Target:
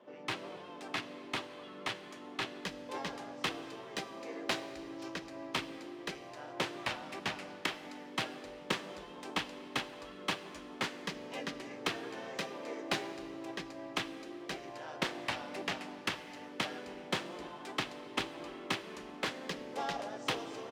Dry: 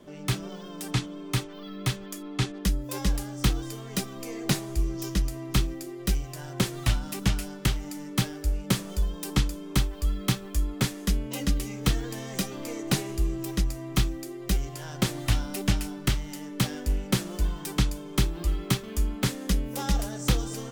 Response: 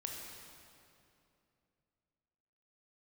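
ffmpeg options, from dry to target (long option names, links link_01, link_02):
-filter_complex "[0:a]highpass=540,equalizer=frequency=1400:width_type=o:width=0.24:gain=-5,adynamicsmooth=sensitivity=1.5:basefreq=2300,asplit=2[link_01][link_02];[link_02]asetrate=37084,aresample=44100,atempo=1.18921,volume=-4dB[link_03];[link_01][link_03]amix=inputs=2:normalize=0,asplit=2[link_04][link_05];[1:a]atrim=start_sample=2205,highshelf=frequency=5500:gain=5[link_06];[link_05][link_06]afir=irnorm=-1:irlink=0,volume=-8dB[link_07];[link_04][link_07]amix=inputs=2:normalize=0,volume=-3dB"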